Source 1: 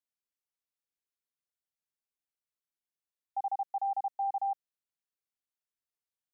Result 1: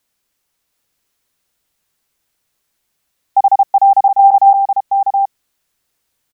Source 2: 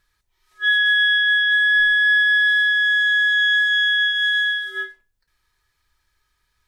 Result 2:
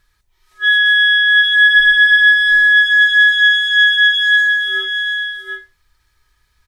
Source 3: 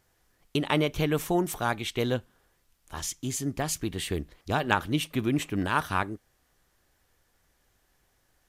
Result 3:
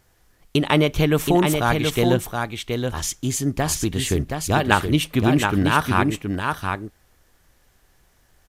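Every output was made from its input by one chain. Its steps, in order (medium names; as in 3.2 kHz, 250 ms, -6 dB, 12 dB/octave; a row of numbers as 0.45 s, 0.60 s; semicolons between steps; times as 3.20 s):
bass shelf 120 Hz +5 dB; on a send: delay 723 ms -5 dB; on the sum: peak normalisation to -1.5 dBFS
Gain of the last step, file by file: +23.0 dB, +5.0 dB, +7.0 dB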